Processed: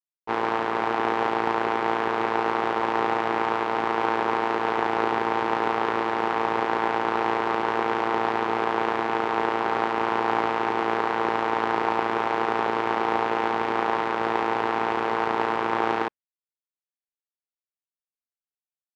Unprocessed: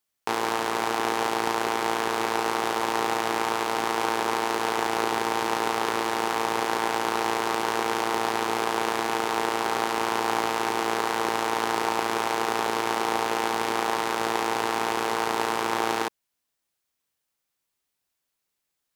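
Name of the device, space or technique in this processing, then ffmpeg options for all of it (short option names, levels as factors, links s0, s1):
hearing-loss simulation: -af "lowpass=2300,agate=range=0.0224:threshold=0.0562:ratio=3:detection=peak,volume=1.33"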